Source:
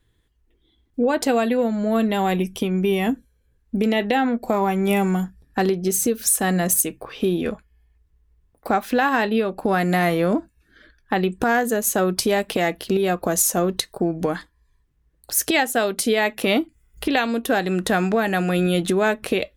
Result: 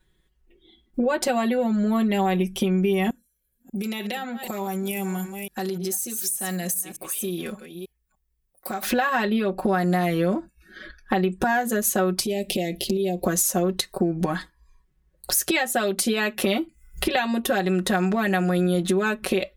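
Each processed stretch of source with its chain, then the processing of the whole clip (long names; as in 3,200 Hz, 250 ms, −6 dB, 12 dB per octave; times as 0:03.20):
0:03.10–0:08.83: delay that plays each chunk backwards 297 ms, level −14 dB + first-order pre-emphasis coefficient 0.8 + downward compressor 2.5 to 1, threshold −37 dBFS
0:12.23–0:13.25: downward compressor, threshold −23 dBFS + Butterworth band-reject 1,300 Hz, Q 0.67
whole clip: noise reduction from a noise print of the clip's start 10 dB; comb filter 5.4 ms, depth 97%; downward compressor 3 to 1, threshold −31 dBFS; level +7 dB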